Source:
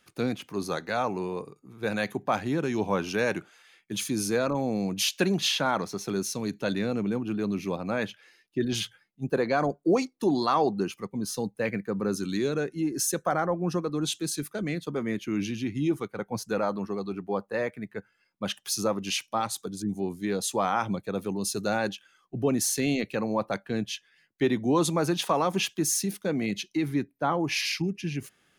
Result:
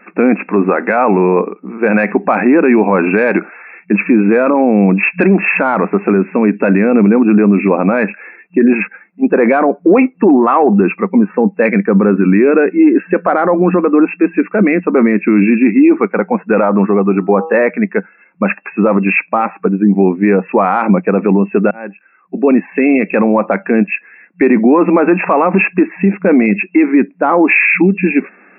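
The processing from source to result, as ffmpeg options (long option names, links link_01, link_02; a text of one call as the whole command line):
ffmpeg -i in.wav -filter_complex "[0:a]asettb=1/sr,asplit=3[link_01][link_02][link_03];[link_01]atrim=end=17.044[link_04];[link_02]atrim=start=17.04:end=17.62,asetpts=PTS-STARTPTS,afade=type=in:duration=0.004:curve=qsin,afade=type=out:start_time=0.576:duration=0.004:curve=qsin,bandreject=frequency=161:width_type=h:width=4,bandreject=frequency=322:width_type=h:width=4,bandreject=frequency=483:width_type=h:width=4,bandreject=frequency=644:width_type=h:width=4,bandreject=frequency=805:width_type=h:width=4,bandreject=frequency=966:width_type=h:width=4,bandreject=frequency=1127:width_type=h:width=4,bandreject=frequency=1288:width_type=h:width=4[link_05];[link_03]atrim=start=17.616[link_06];[link_04][link_05]acrossfade=duration=0.004:curve1=hsin:curve2=qsin[link_07];[link_07][link_06]acrossfade=duration=0.004:curve1=qsin:curve2=hsin,asplit=2[link_08][link_09];[link_08]atrim=end=21.71,asetpts=PTS-STARTPTS,afade=type=out:start_time=21.706:duration=0.004:curve=hsin[link_10];[link_09]atrim=start=21.71,asetpts=PTS-STARTPTS,afade=type=in:duration=1.57[link_11];[link_10][link_11]concat=n=2:v=0:a=1,afftfilt=real='re*between(b*sr/4096,180,2700)':imag='im*between(b*sr/4096,180,2700)':win_size=4096:overlap=0.75,acontrast=44,alimiter=level_in=19.5dB:limit=-1dB:release=50:level=0:latency=1,volume=-1dB" out.wav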